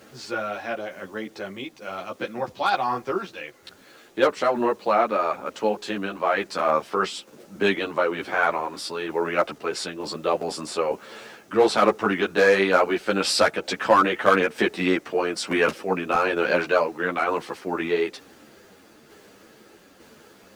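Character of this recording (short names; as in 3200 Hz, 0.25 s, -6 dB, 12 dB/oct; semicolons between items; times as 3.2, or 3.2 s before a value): a quantiser's noise floor 10-bit, dither none; tremolo saw down 1.1 Hz, depth 35%; a shimmering, thickened sound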